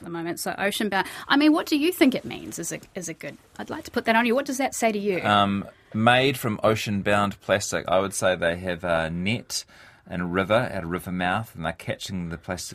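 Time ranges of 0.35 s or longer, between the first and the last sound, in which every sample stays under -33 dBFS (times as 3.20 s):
9.61–10.11 s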